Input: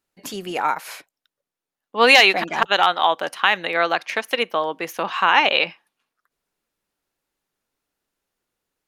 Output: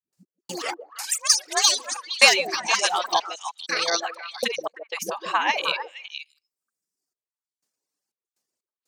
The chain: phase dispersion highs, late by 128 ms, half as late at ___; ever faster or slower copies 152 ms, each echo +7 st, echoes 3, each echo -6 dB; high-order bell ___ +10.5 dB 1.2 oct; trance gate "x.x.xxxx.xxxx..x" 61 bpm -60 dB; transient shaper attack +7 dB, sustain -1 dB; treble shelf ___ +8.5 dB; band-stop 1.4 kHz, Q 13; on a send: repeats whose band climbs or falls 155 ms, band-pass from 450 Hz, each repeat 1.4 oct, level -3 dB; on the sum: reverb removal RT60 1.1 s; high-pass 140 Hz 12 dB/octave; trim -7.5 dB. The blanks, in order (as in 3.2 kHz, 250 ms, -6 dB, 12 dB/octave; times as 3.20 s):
340 Hz, 6.3 kHz, 12 kHz